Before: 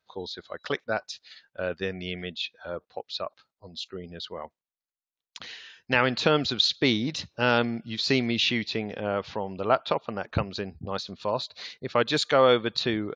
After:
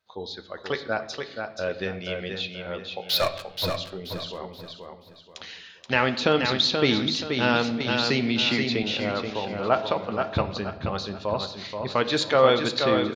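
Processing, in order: 3.09–3.70 s: waveshaping leveller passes 5; feedback delay 479 ms, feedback 33%, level -5.5 dB; on a send at -8 dB: reverberation RT60 0.95 s, pre-delay 9 ms; 7.80–8.83 s: on the sum: three bands compressed up and down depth 70%

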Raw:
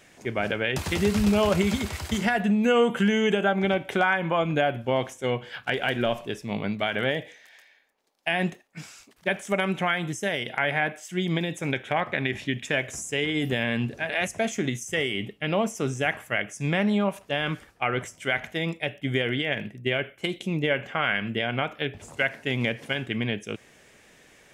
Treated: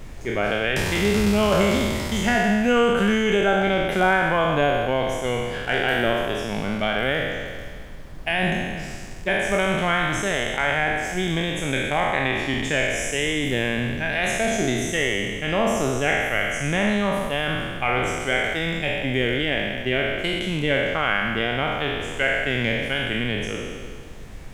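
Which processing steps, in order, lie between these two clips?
spectral sustain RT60 1.80 s; added noise brown -36 dBFS

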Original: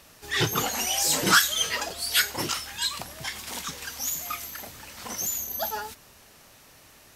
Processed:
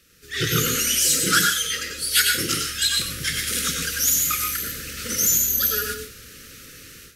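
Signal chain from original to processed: elliptic band-stop 510–1300 Hz, stop band 40 dB; reverberation RT60 0.40 s, pre-delay 89 ms, DRR 2.5 dB; level rider gain up to 14 dB; dynamic bell 10 kHz, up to +7 dB, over -37 dBFS, Q 2.6; trim -4.5 dB

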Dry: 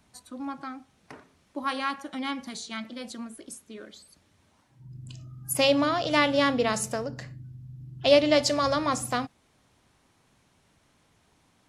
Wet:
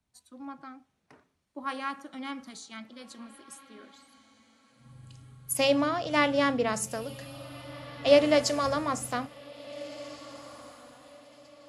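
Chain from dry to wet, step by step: echo that smears into a reverb 1720 ms, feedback 42%, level -13 dB; dynamic bell 3.9 kHz, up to -5 dB, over -43 dBFS, Q 1.8; three bands expanded up and down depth 40%; trim -4 dB

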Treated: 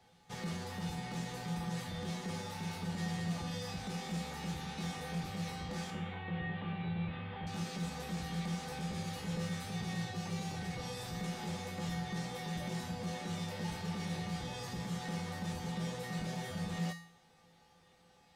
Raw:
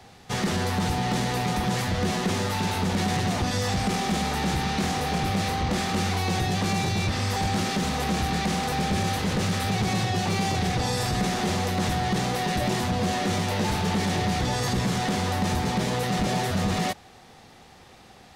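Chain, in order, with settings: 5.90–7.47 s: steep low-pass 3.3 kHz 48 dB/octave; feedback comb 170 Hz, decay 0.55 s, harmonics odd, mix 90%

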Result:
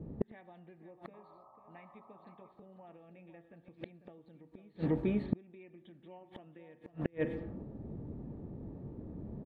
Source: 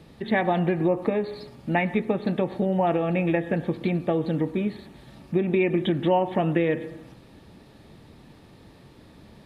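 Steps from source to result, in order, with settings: level-controlled noise filter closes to 350 Hz, open at -22 dBFS; painted sound noise, 1.13–2.52 s, 530–1300 Hz -28 dBFS; echo from a far wall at 85 m, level -11 dB; inverted gate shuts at -22 dBFS, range -38 dB; trim +5.5 dB

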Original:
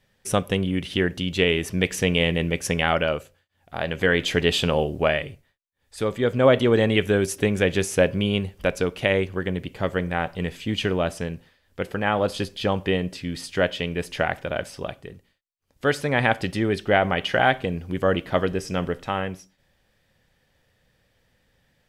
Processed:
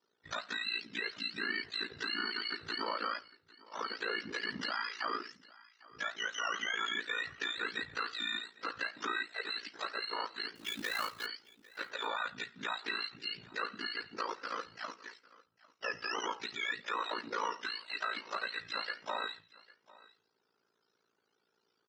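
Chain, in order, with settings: spectrum inverted on a logarithmic axis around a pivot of 860 Hz; high-pass 630 Hz 12 dB/octave; in parallel at 0 dB: compression, threshold -33 dBFS, peak gain reduction 16 dB; on the sum: peak limiter -17 dBFS, peak gain reduction 9 dB; Chebyshev low-pass 5.4 kHz, order 4; 10.55–11.26 s: companded quantiser 4-bit; ring modulator 28 Hz; flange 1.3 Hz, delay 4.5 ms, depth 3.6 ms, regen -87%; on a send: delay 801 ms -22 dB; on the sum: trim -2 dB

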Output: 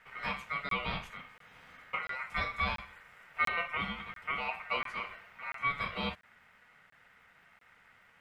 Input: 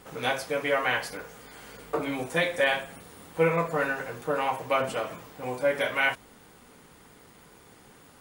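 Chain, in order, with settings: ring modulator 1.7 kHz; FFT filter 190 Hz 0 dB, 320 Hz -11 dB, 480 Hz -3 dB, 2.1 kHz +1 dB, 3.9 kHz -10 dB, 15 kHz -19 dB; crackling interface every 0.69 s, samples 1024, zero, from 0.69 s; trim -4 dB

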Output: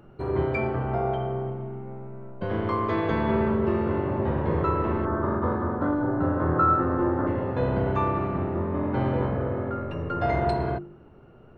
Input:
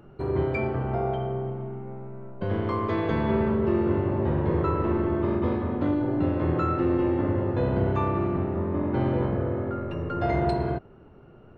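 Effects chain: 5.05–7.27 s: resonant high shelf 1.9 kHz -8.5 dB, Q 3; de-hum 49.79 Hz, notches 9; dynamic bell 1.2 kHz, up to +3 dB, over -38 dBFS, Q 0.74

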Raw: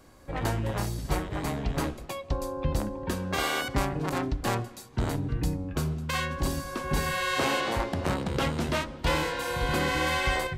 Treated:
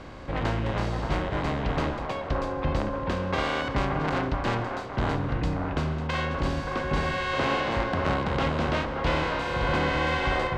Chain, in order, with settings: spectral levelling over time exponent 0.6; distance through air 150 m; feedback echo behind a band-pass 578 ms, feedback 52%, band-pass 850 Hz, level -3.5 dB; trim -1.5 dB

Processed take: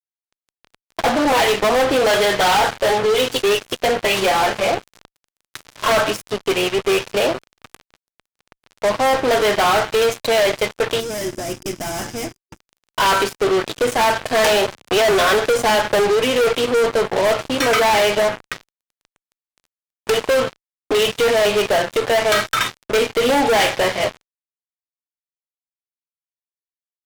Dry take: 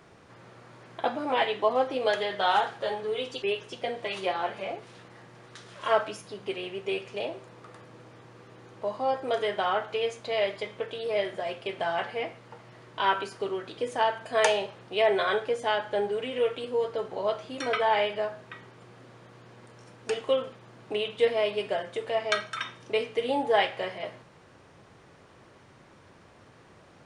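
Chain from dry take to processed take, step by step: fuzz box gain 36 dB, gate -41 dBFS; 11.00–12.59 s: time-frequency box 380–4800 Hz -12 dB; 14.71–16.10 s: three bands compressed up and down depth 40%

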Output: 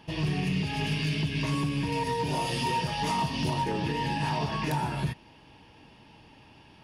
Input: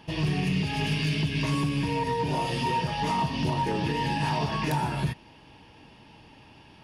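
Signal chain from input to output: 1.92–3.64 s: treble shelf 4.3 kHz +8 dB; trim -2 dB

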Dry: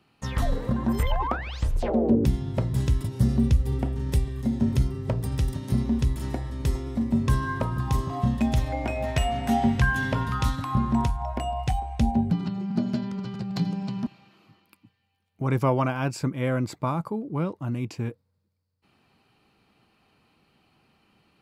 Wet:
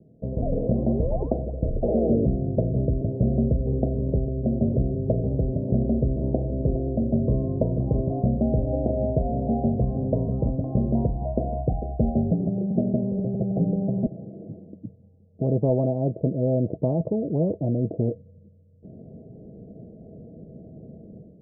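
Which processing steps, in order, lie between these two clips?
level rider; rippled Chebyshev low-pass 670 Hz, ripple 6 dB; spectrum-flattening compressor 2:1; trim -2 dB

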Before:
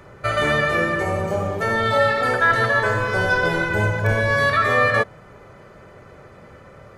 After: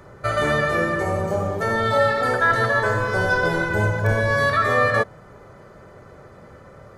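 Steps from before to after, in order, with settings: peaking EQ 2.6 kHz -7 dB 0.74 oct

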